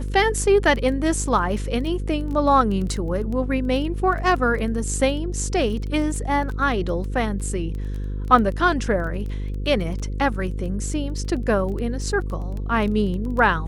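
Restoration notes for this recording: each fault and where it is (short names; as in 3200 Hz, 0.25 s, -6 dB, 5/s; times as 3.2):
buzz 50 Hz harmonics 10 -27 dBFS
crackle 12/s -28 dBFS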